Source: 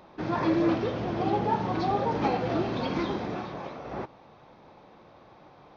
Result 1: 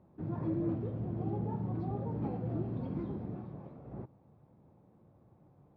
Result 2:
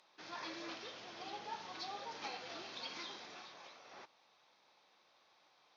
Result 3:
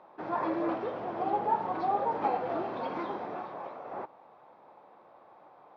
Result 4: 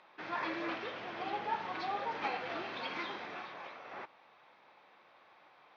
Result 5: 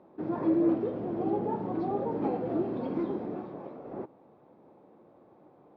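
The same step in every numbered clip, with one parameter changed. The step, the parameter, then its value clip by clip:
band-pass, frequency: 110, 6000, 840, 2200, 330 Hz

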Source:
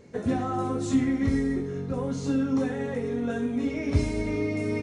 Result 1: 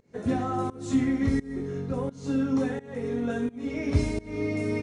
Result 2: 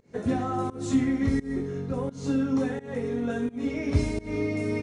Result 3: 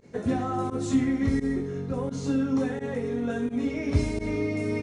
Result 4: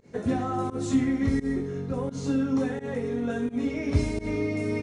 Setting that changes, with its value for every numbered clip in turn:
pump, release: 377, 235, 62, 107 ms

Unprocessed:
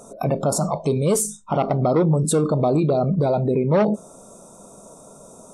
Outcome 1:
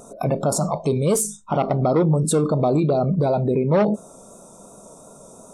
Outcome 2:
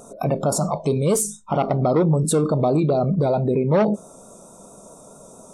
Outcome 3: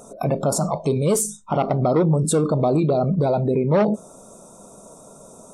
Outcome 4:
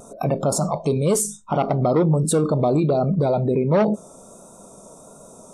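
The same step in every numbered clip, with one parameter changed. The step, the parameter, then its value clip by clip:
vibrato, rate: 2.8, 4.5, 12, 1.4 Hz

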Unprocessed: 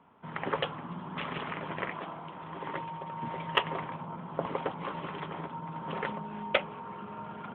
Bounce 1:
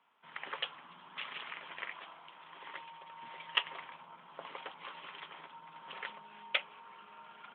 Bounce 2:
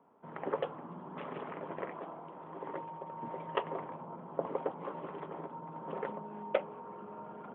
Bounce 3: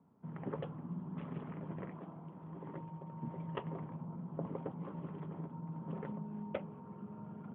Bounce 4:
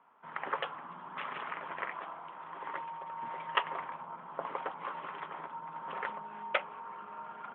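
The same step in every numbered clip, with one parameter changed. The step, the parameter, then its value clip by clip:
band-pass, frequency: 3500, 470, 160, 1300 Hz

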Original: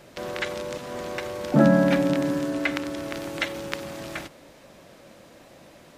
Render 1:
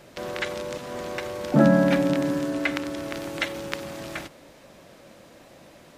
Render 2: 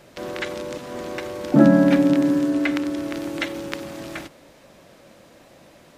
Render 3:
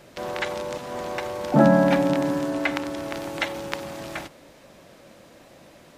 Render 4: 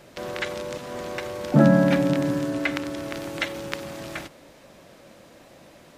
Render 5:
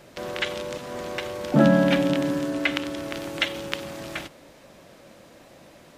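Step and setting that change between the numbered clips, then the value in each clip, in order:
dynamic EQ, frequency: 9800, 300, 840, 120, 3100 Hz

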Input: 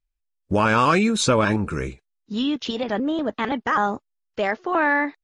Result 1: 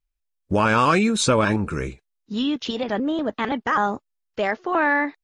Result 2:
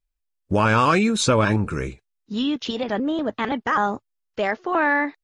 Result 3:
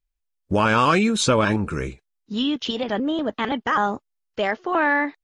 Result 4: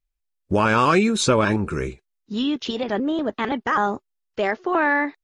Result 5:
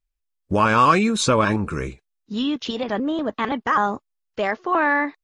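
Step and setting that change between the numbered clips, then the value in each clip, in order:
dynamic EQ, frequency: 8500, 110, 3100, 380, 1100 Hz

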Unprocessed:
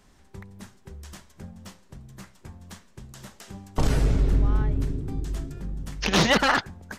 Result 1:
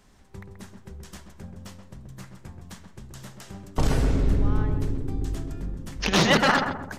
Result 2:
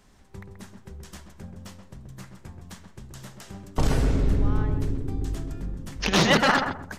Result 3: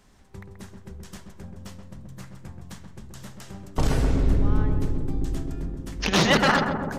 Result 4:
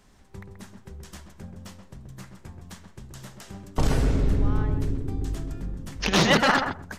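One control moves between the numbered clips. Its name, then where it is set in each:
darkening echo, feedback: 46, 29, 78, 15%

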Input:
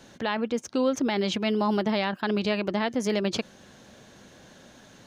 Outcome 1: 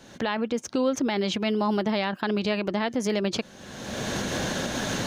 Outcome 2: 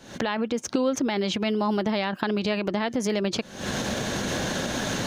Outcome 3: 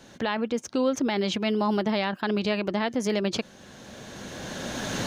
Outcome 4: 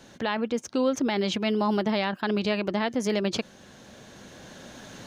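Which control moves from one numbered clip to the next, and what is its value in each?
recorder AGC, rising by: 34, 84, 14, 5.1 dB/s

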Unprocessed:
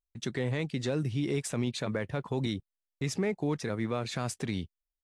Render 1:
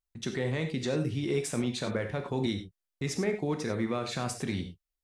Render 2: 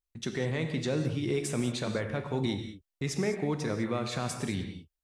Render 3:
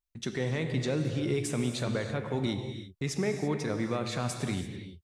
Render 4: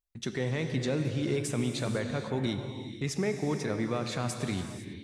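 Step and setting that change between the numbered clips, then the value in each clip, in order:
non-linear reverb, gate: 0.12, 0.23, 0.36, 0.53 s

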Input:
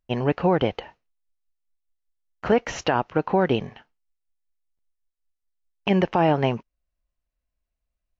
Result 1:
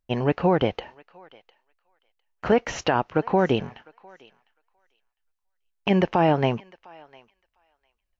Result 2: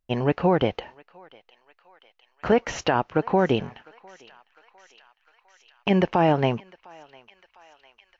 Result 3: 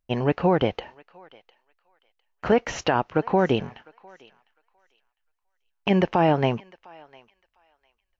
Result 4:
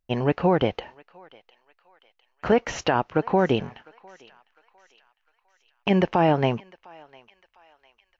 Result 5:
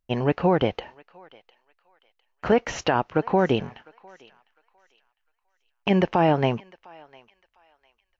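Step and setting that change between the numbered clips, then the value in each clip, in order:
thinning echo, feedback: 15, 82, 23, 55, 34%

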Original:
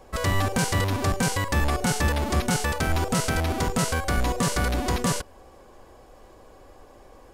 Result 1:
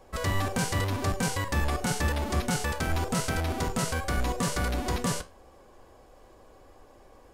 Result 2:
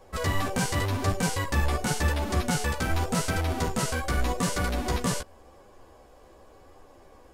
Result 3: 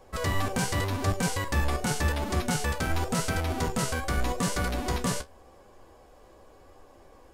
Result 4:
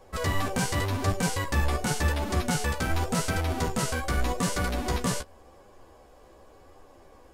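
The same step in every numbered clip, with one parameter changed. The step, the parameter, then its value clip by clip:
flange, regen: -73, -5, +51, +19%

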